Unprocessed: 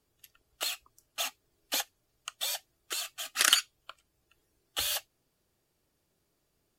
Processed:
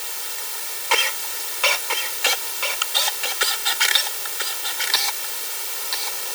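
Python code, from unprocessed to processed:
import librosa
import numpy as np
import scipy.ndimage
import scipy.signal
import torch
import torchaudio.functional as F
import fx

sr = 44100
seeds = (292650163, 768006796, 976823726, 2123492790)

y = fx.speed_glide(x, sr, from_pct=60, to_pct=154)
y = fx.recorder_agc(y, sr, target_db=-13.0, rise_db_per_s=21.0, max_gain_db=30)
y = fx.lowpass(y, sr, hz=4000.0, slope=6)
y = fx.quant_dither(y, sr, seeds[0], bits=6, dither='triangular')
y = scipy.signal.sosfilt(scipy.signal.butter(2, 420.0, 'highpass', fs=sr, output='sos'), y)
y = y + 0.79 * np.pad(y, (int(2.2 * sr / 1000.0), 0))[:len(y)]
y = y + 10.0 ** (-6.5 / 20.0) * np.pad(y, (int(989 * sr / 1000.0), 0))[:len(y)]
y = y * 10.0 ** (5.5 / 20.0)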